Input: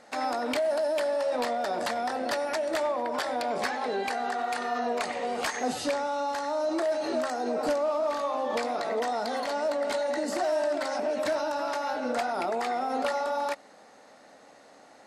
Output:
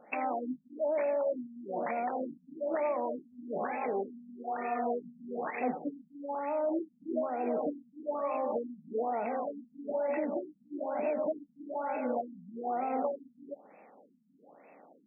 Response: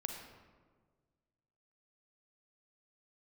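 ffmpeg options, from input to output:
-af "highshelf=frequency=2400:width_type=q:width=3:gain=13,afftfilt=real='re*between(b*sr/4096,140,8700)':imag='im*between(b*sr/4096,140,8700)':win_size=4096:overlap=0.75,afftfilt=real='re*lt(b*sr/1024,240*pow(2700/240,0.5+0.5*sin(2*PI*1.1*pts/sr)))':imag='im*lt(b*sr/1024,240*pow(2700/240,0.5+0.5*sin(2*PI*1.1*pts/sr)))':win_size=1024:overlap=0.75,volume=-1.5dB"

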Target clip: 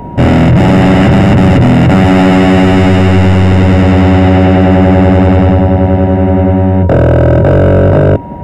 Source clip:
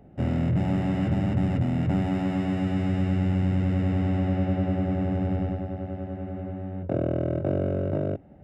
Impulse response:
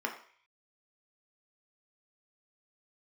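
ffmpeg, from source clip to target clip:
-af "aeval=exprs='val(0)+0.002*sin(2*PI*950*n/s)':channel_layout=same,apsyclip=29dB,volume=-2dB"

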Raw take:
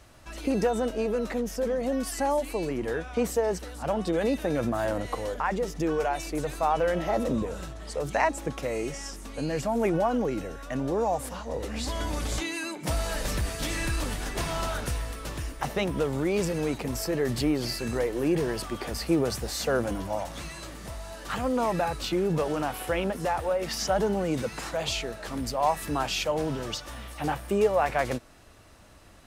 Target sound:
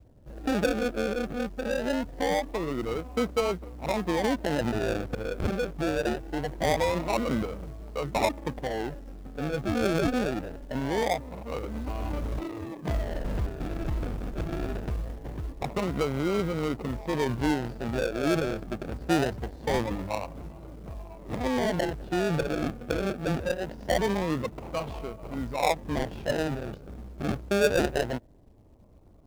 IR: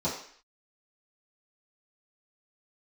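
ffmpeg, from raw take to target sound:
-filter_complex "[0:a]acrossover=split=2500[link_01][link_02];[link_01]acrusher=samples=35:mix=1:aa=0.000001:lfo=1:lforange=21:lforate=0.23[link_03];[link_02]flanger=delay=17:depth=4.7:speed=1.6[link_04];[link_03][link_04]amix=inputs=2:normalize=0,adynamicsmooth=sensitivity=2.5:basefreq=600,acrusher=bits=6:mode=log:mix=0:aa=0.000001"

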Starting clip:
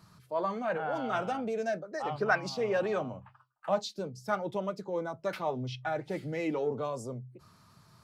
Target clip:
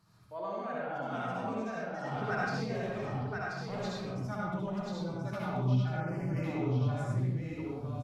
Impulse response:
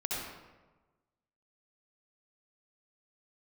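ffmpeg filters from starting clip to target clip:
-filter_complex "[0:a]asubboost=boost=9.5:cutoff=150,asettb=1/sr,asplit=3[link_01][link_02][link_03];[link_01]atrim=end=2.644[link_04];[link_02]atrim=start=2.64:end=3.77,asetpts=PTS-STARTPTS,afade=type=in:duration=0.004:curve=qsin,afade=type=out:start_time=1.126:duration=0.004:curve=qsin,asoftclip=type=hard:threshold=-29dB[link_05];[link_03]atrim=start=3.766[link_06];[link_04][link_05]acrossfade=duration=0.004:curve1=hsin:curve2=qsin[link_07];[link_07][link_06]acrossfade=duration=0.004:curve1=qsin:curve2=hsin,aecho=1:1:1033:0.631[link_08];[1:a]atrim=start_sample=2205,afade=type=out:start_time=0.32:duration=0.01,atrim=end_sample=14553[link_09];[link_08][link_09]afir=irnorm=-1:irlink=0,aresample=32000,aresample=44100,asettb=1/sr,asplit=3[link_10][link_11][link_12];[link_10]atrim=end=6.004[link_13];[link_11]atrim=start=6:end=6.44,asetpts=PTS-STARTPTS,afade=type=in:duration=0.004:curve=qsin,afade=type=out:start_time=0.436:duration=0.004:curve=qsin,asuperstop=centerf=3700:order=12:qfactor=2.7[link_14];[link_12]atrim=start=6.436[link_15];[link_13][link_14]acrossfade=duration=0.004:curve1=hsin:curve2=qsin[link_16];[link_16][link_15]acrossfade=duration=0.004:curve1=qsin:curve2=hsin,volume=-8.5dB"

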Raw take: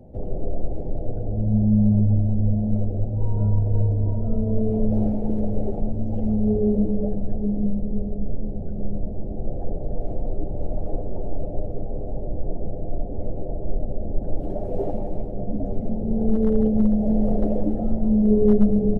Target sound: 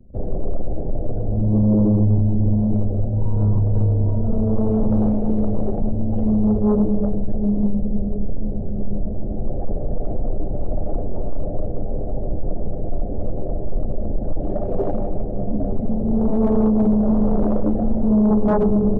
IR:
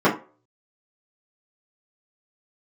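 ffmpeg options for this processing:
-filter_complex "[0:a]asplit=2[link_01][link_02];[1:a]atrim=start_sample=2205,asetrate=57330,aresample=44100,lowshelf=frequency=200:gain=4[link_03];[link_02][link_03]afir=irnorm=-1:irlink=0,volume=-40dB[link_04];[link_01][link_04]amix=inputs=2:normalize=0,anlmdn=1.58,bandreject=frequency=84.51:width_type=h:width=4,bandreject=frequency=169.02:width_type=h:width=4,bandreject=frequency=253.53:width_type=h:width=4,bandreject=frequency=338.04:width_type=h:width=4,bandreject=frequency=422.55:width_type=h:width=4,bandreject=frequency=507.06:width_type=h:width=4,bandreject=frequency=591.57:width_type=h:width=4,bandreject=frequency=676.08:width_type=h:width=4,bandreject=frequency=760.59:width_type=h:width=4,bandreject=frequency=845.1:width_type=h:width=4,bandreject=frequency=929.61:width_type=h:width=4,bandreject=frequency=1014.12:width_type=h:width=4,bandreject=frequency=1098.63:width_type=h:width=4,bandreject=frequency=1183.14:width_type=h:width=4,bandreject=frequency=1267.65:width_type=h:width=4,bandreject=frequency=1352.16:width_type=h:width=4,aeval=exprs='0.596*sin(PI/2*2.82*val(0)/0.596)':channel_layout=same,volume=-7.5dB"

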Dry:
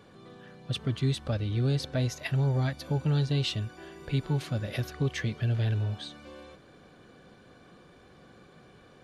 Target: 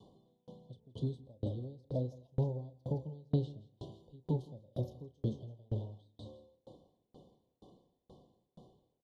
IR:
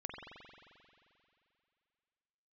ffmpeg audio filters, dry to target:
-filter_complex "[0:a]highshelf=frequency=3800:gain=-9,asplit=2[link_01][link_02];[link_02]adelay=32,volume=-10.5dB[link_03];[link_01][link_03]amix=inputs=2:normalize=0,asplit=2[link_04][link_05];[1:a]atrim=start_sample=2205,adelay=116[link_06];[link_05][link_06]afir=irnorm=-1:irlink=0,volume=-18dB[link_07];[link_04][link_07]amix=inputs=2:normalize=0,adynamicequalizer=threshold=0.002:dfrequency=520:dqfactor=6.3:tfrequency=520:tqfactor=6.3:attack=5:release=100:ratio=0.375:range=3.5:mode=boostabove:tftype=bell,asuperstop=centerf=1800:order=20:qfactor=0.9,aecho=1:1:164|328|492|656:0.316|0.13|0.0532|0.0218,acrossover=split=120|760[link_08][link_09][link_10];[link_08]asoftclip=type=tanh:threshold=-37.5dB[link_11];[link_10]acompressor=threshold=-53dB:ratio=6[link_12];[link_11][link_09][link_12]amix=inputs=3:normalize=0,aeval=exprs='val(0)*pow(10,-35*if(lt(mod(2.1*n/s,1),2*abs(2.1)/1000),1-mod(2.1*n/s,1)/(2*abs(2.1)/1000),(mod(2.1*n/s,1)-2*abs(2.1)/1000)/(1-2*abs(2.1)/1000))/20)':channel_layout=same"

